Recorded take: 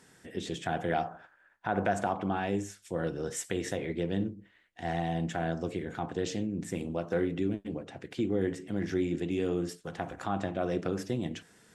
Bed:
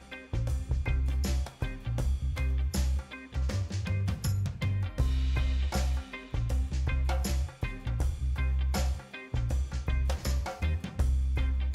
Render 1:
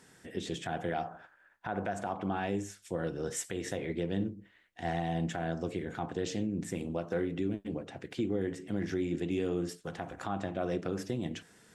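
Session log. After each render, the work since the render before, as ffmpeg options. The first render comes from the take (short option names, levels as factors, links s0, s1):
-af "alimiter=limit=0.075:level=0:latency=1:release=276"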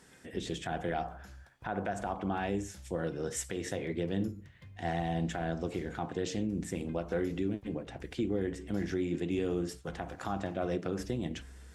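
-filter_complex "[1:a]volume=0.0794[s0];[0:a][s0]amix=inputs=2:normalize=0"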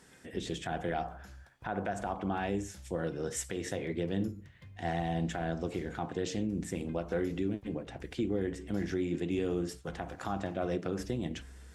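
-af anull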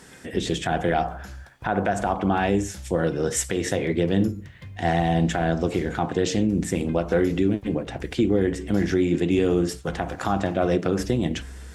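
-af "volume=3.76"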